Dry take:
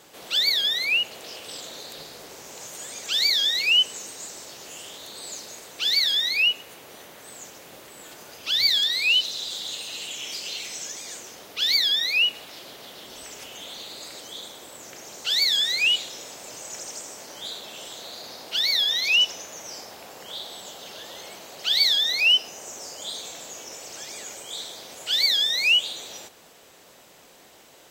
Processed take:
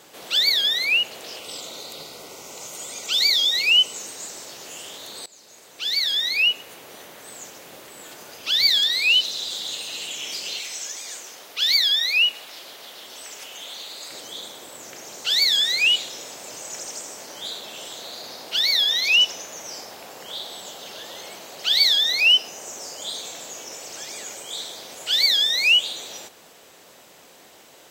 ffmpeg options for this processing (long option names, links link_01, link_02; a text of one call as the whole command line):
ffmpeg -i in.wav -filter_complex "[0:a]asettb=1/sr,asplit=3[link_01][link_02][link_03];[link_01]atrim=end=1.394[link_04];[link_02]atrim=start=1.39:end=3.97,asetpts=PTS-STARTPTS,afade=type=in:duration=0.004:curve=qsin,afade=type=out:start_time=2.576:duration=0.004:curve=qsin,asuperstop=centerf=1700:order=20:qfactor=5.2[link_05];[link_03]atrim=start=3.966[link_06];[link_04][link_05]acrossfade=duration=0.004:curve1=hsin:curve2=qsin[link_07];[link_07][link_06]acrossfade=duration=0.004:curve1=qsin:curve2=hsin,asettb=1/sr,asplit=3[link_08][link_09][link_10];[link_08]atrim=end=10.594[link_11];[link_09]atrim=start=10.59:end=14.1,asetpts=PTS-STARTPTS,afade=type=in:duration=0.004:curve=qsin,afade=type=out:start_time=3.506:duration=0.004:curve=qsin,lowshelf=frequency=350:gain=-11.5[link_12];[link_10]atrim=start=14.096[link_13];[link_11][link_12]acrossfade=duration=0.004:curve1=hsin:curve2=qsin[link_14];[link_14][link_13]acrossfade=duration=0.004:curve1=qsin:curve2=hsin,asplit=2[link_15][link_16];[link_15]atrim=end=5.26,asetpts=PTS-STARTPTS,afade=type=out:start_time=5.256:duration=0.004:curve=hsin:silence=0.0944061[link_17];[link_16]atrim=start=5.26,asetpts=PTS-STARTPTS,afade=type=in:duration=1.73:curve=qsin:silence=0.0944061[link_18];[link_17][link_18]concat=n=2:v=0:a=1,lowshelf=frequency=77:gain=-8.5,volume=2.5dB" out.wav